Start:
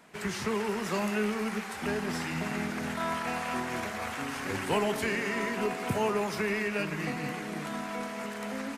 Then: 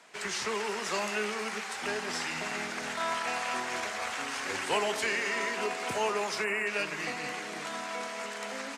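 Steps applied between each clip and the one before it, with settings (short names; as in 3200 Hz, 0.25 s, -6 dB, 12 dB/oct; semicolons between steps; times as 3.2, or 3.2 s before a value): bell 7800 Hz +14.5 dB 1.6 oct; spectral gain 6.44–6.67, 3000–6900 Hz -19 dB; three-band isolator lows -14 dB, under 360 Hz, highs -14 dB, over 5300 Hz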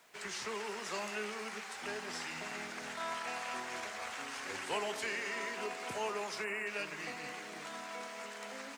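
requantised 10-bit, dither none; gain -7.5 dB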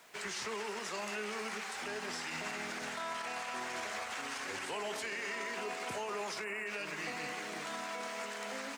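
limiter -35 dBFS, peak gain reduction 9.5 dB; gain +4.5 dB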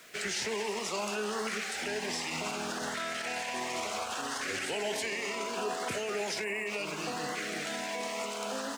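LFO notch saw up 0.68 Hz 840–2500 Hz; gain +7 dB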